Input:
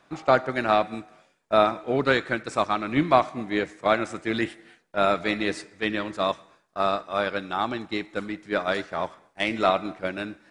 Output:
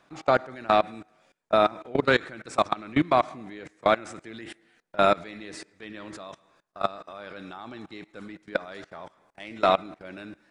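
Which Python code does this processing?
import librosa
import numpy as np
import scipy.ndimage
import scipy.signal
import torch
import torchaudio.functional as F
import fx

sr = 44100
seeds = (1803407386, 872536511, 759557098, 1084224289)

y = fx.level_steps(x, sr, step_db=22)
y = F.gain(torch.from_numpy(y), 3.5).numpy()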